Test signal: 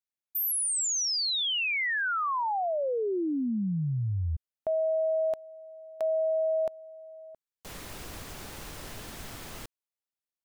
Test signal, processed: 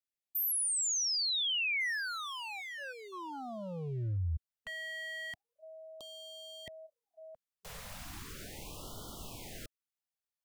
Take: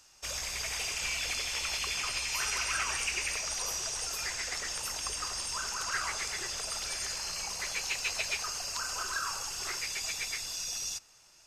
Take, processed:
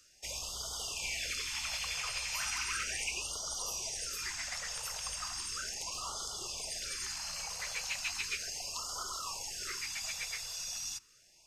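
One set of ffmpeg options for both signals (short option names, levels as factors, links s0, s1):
-filter_complex "[0:a]acrossover=split=100|2100[s0][s1][s2];[s1]aeval=exprs='0.0237*(abs(mod(val(0)/0.0237+3,4)-2)-1)':c=same[s3];[s0][s3][s2]amix=inputs=3:normalize=0,afftfilt=real='re*(1-between(b*sr/1024,280*pow(2100/280,0.5+0.5*sin(2*PI*0.36*pts/sr))/1.41,280*pow(2100/280,0.5+0.5*sin(2*PI*0.36*pts/sr))*1.41))':imag='im*(1-between(b*sr/1024,280*pow(2100/280,0.5+0.5*sin(2*PI*0.36*pts/sr))/1.41,280*pow(2100/280,0.5+0.5*sin(2*PI*0.36*pts/sr))*1.41))':win_size=1024:overlap=0.75,volume=0.668"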